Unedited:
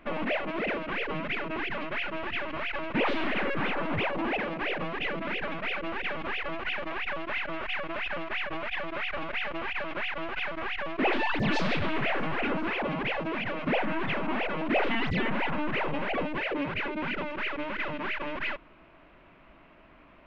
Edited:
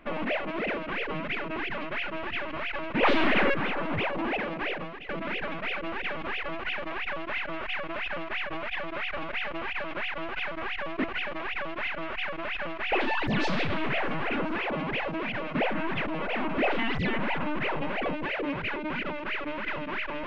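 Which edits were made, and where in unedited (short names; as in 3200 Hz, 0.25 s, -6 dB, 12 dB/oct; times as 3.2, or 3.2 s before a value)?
3.03–3.54 gain +6 dB
4.66–5.09 fade out, to -16.5 dB
6.55–8.43 copy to 11.04
14.18–14.7 reverse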